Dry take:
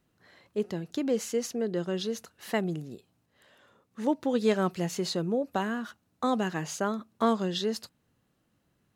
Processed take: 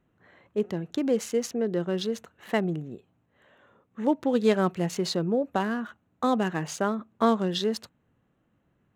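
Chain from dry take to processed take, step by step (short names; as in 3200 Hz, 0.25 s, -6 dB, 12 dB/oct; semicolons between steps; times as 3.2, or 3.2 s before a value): Wiener smoothing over 9 samples; gain +3 dB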